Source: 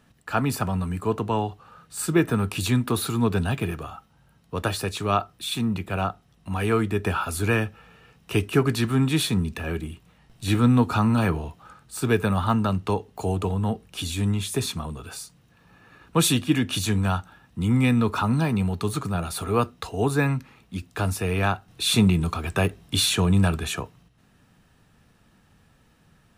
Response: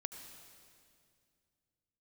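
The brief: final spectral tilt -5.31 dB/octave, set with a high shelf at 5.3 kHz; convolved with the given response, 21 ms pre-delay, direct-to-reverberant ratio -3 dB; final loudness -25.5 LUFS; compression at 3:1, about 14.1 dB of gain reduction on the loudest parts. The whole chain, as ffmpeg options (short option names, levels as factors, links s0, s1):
-filter_complex "[0:a]highshelf=f=5300:g=-5.5,acompressor=threshold=0.02:ratio=3,asplit=2[s0][s1];[1:a]atrim=start_sample=2205,adelay=21[s2];[s1][s2]afir=irnorm=-1:irlink=0,volume=1.78[s3];[s0][s3]amix=inputs=2:normalize=0,volume=1.78"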